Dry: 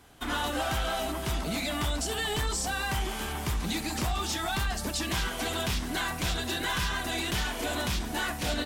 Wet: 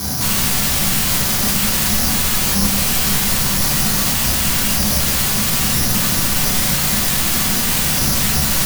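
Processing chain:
high-pass filter 74 Hz 24 dB per octave
speech leveller 0.5 s
low-pass filter 2,100 Hz 12 dB per octave
sine wavefolder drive 20 dB, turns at −19 dBFS
bad sample-rate conversion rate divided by 8×, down none, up zero stuff
soft clipping −9 dBFS, distortion −13 dB
convolution reverb RT60 0.70 s, pre-delay 5 ms, DRR −1.5 dB
brickwall limiter −5.5 dBFS, peak gain reduction 3.5 dB
low shelf with overshoot 260 Hz +9 dB, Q 1.5

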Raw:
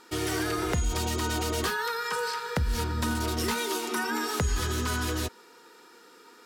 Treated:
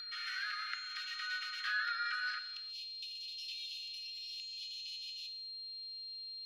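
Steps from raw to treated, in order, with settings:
Butterworth high-pass 1,300 Hz 96 dB per octave, from 0:02.38 2,600 Hz
upward compression, threshold −48 dBFS
high-frequency loss of the air 310 metres
steady tone 4,200 Hz −40 dBFS
reverb whose tail is shaped and stops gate 360 ms falling, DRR 7.5 dB
level −2 dB

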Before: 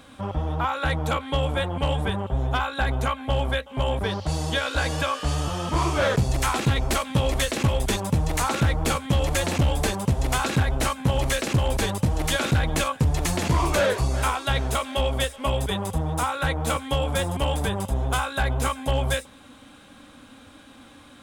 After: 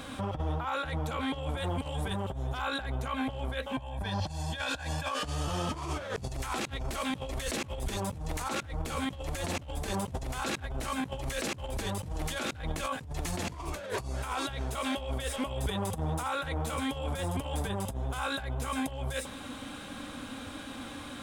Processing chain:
0:01.57–0:02.62: bass and treble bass 0 dB, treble +7 dB
0:03.72–0:05.11: comb filter 1.2 ms, depth 63%
compressor whose output falls as the input rises −29 dBFS, ratio −0.5
brickwall limiter −23.5 dBFS, peak gain reduction 11.5 dB

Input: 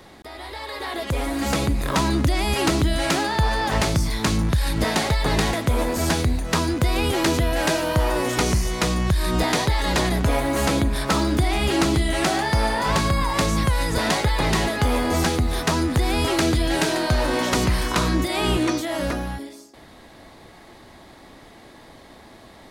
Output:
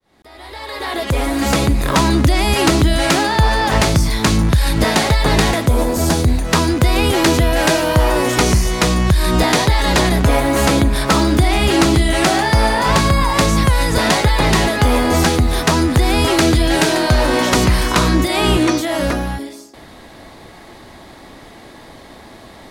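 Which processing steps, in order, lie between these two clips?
fade in at the beginning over 0.94 s
0:05.66–0:06.28: parametric band 2,200 Hz −7 dB 1.8 octaves
level +7 dB

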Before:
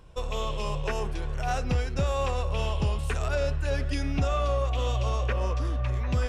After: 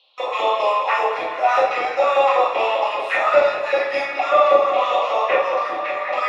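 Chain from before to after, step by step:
three-way crossover with the lows and the highs turned down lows −24 dB, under 500 Hz, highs −18 dB, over 3,700 Hz
delay that swaps between a low-pass and a high-pass 106 ms, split 920 Hz, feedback 82%, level −12 dB
auto-filter high-pass saw up 5.1 Hz 400–2,000 Hz
high-pass filter 59 Hz
notch comb filter 1,500 Hz
rectangular room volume 120 cubic metres, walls mixed, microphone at 5.1 metres
noise gate with hold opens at −28 dBFS
noise in a band 2,600–4,200 Hz −59 dBFS
level −1 dB

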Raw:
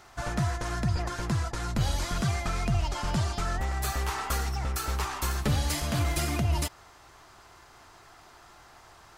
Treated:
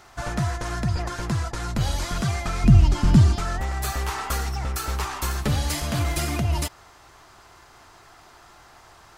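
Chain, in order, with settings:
0:02.64–0:03.36: low shelf with overshoot 390 Hz +10 dB, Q 1.5
level +3 dB

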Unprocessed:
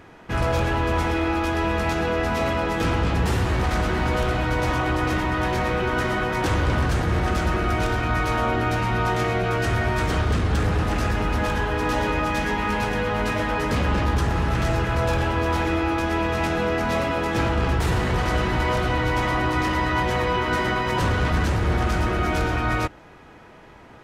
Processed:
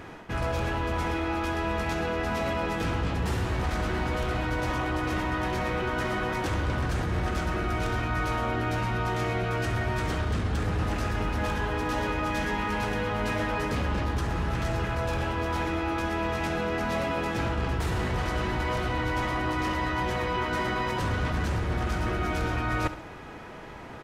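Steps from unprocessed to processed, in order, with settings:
reversed playback
downward compressor 6 to 1, threshold −30 dBFS, peak gain reduction 12 dB
reversed playback
repeating echo 68 ms, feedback 45%, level −14 dB
level +4 dB

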